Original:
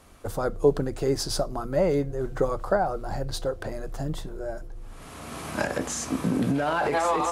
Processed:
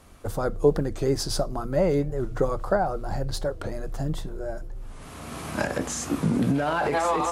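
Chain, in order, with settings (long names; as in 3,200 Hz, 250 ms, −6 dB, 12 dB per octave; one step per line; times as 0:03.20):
bass and treble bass +3 dB, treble 0 dB
wow of a warped record 45 rpm, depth 160 cents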